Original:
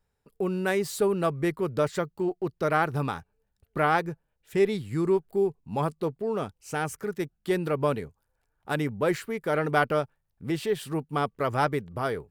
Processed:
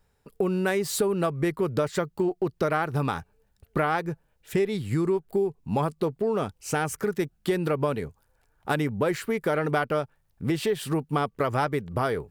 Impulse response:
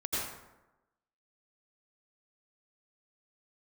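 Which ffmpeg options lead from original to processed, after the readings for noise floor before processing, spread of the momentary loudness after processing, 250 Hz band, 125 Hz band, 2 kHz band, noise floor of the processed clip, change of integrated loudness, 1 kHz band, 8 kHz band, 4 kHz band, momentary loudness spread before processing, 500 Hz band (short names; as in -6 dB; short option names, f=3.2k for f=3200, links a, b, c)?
-77 dBFS, 5 LU, +2.0 dB, +2.5 dB, -0.5 dB, -68 dBFS, +1.0 dB, -0.5 dB, +5.0 dB, +2.0 dB, 8 LU, +0.5 dB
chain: -af "acompressor=threshold=-31dB:ratio=5,volume=8.5dB"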